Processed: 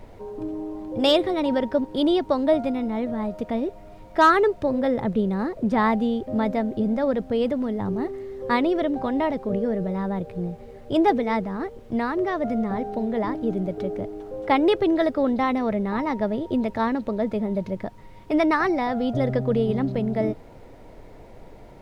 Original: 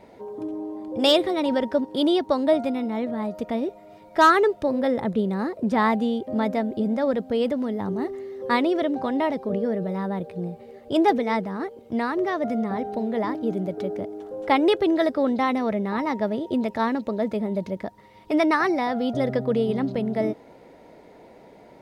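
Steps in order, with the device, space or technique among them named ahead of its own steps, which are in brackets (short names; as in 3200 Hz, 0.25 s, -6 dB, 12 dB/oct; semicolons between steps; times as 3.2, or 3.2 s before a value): car interior (bell 110 Hz +9 dB 0.68 oct; high shelf 4800 Hz -6.5 dB; brown noise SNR 22 dB)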